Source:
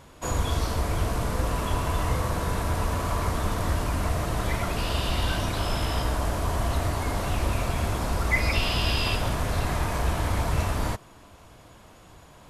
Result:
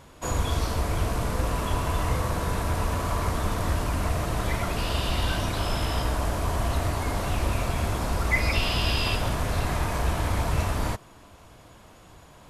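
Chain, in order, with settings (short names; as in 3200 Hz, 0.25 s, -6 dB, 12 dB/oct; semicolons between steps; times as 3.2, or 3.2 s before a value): rattling part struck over -23 dBFS, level -34 dBFS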